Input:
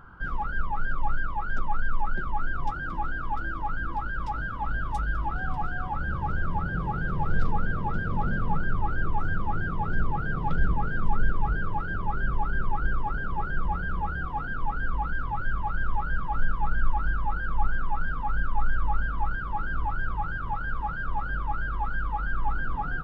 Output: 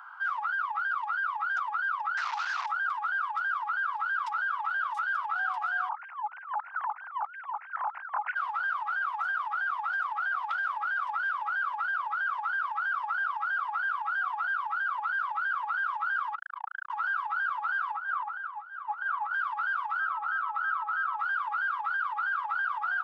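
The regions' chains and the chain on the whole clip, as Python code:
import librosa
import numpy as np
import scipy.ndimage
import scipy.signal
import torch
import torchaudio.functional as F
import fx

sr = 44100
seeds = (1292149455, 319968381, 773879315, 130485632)

y = fx.chain(x, sr, fx.delta_mod(bps=32000, step_db=-28.5),
    fx.high_shelf(hz=2200.0, db=-9.0),
    fx.doppler_dist(depth_ms=0.35), at=(2.17, 2.66))
y = fx.chain(y, sr, fx.sine_speech(),
    fx.low_shelf(hz=380.0, db=10.0),
    fx.over_compress(threshold_db=-26.0, ratio=-1.0), at=(5.89, 8.35))
y = fx.chain(y, sr, fx.air_absorb(metres=120.0),
    fx.transformer_sat(knee_hz=180.0), at=(16.35, 16.9))
y = fx.chain(y, sr, fx.over_compress(threshold_db=-26.0, ratio=-1.0),
    fx.lowpass(hz=1200.0, slope=6), at=(17.95, 19.34))
y = fx.tilt_eq(y, sr, slope=-2.5, at=(19.99, 21.17), fade=0.02)
y = fx.dmg_tone(y, sr, hz=1300.0, level_db=-40.0, at=(19.99, 21.17), fade=0.02)
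y = fx.brickwall_highpass(y, sr, low_hz=430.0, at=(19.99, 21.17), fade=0.02)
y = scipy.signal.sosfilt(scipy.signal.butter(8, 800.0, 'highpass', fs=sr, output='sos'), y)
y = fx.high_shelf(y, sr, hz=2700.0, db=-3.5)
y = fx.over_compress(y, sr, threshold_db=-35.0, ratio=-0.5)
y = y * librosa.db_to_amplitude(4.5)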